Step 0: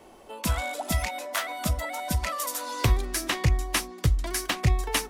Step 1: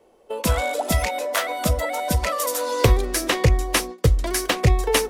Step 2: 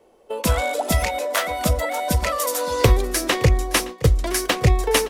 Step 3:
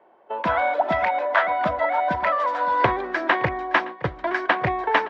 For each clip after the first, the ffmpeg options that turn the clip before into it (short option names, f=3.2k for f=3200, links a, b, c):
-af "equalizer=f=480:w=2.7:g=12.5,agate=range=-15dB:threshold=-36dB:ratio=16:detection=peak,volume=5dB"
-af "aecho=1:1:567:0.106,volume=1dB"
-af "highpass=230,equalizer=f=250:t=q:w=4:g=-5,equalizer=f=470:t=q:w=4:g=-10,equalizer=f=670:t=q:w=4:g=5,equalizer=f=950:t=q:w=4:g=8,equalizer=f=1.6k:t=q:w=4:g=8,equalizer=f=2.7k:t=q:w=4:g=-5,lowpass=f=2.8k:w=0.5412,lowpass=f=2.8k:w=1.3066"